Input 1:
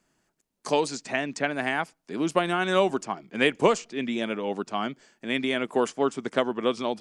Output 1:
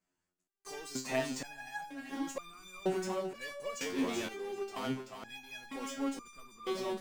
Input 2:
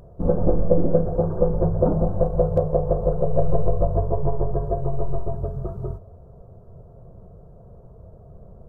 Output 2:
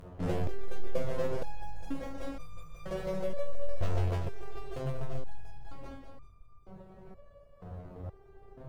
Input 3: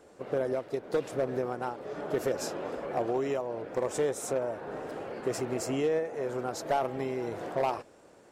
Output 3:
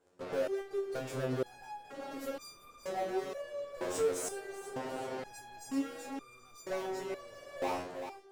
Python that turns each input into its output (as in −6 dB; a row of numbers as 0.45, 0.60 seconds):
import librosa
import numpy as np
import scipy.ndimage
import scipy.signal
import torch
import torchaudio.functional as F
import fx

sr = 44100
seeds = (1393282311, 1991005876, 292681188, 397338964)

p1 = fx.fuzz(x, sr, gain_db=39.0, gate_db=-47.0)
p2 = x + (p1 * 10.0 ** (-8.0 / 20.0))
p3 = fx.echo_feedback(p2, sr, ms=385, feedback_pct=30, wet_db=-8.0)
p4 = fx.resonator_held(p3, sr, hz=2.1, low_hz=90.0, high_hz=1200.0)
y = p4 * 10.0 ** (-5.5 / 20.0)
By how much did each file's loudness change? −12.0, −15.0, −6.0 LU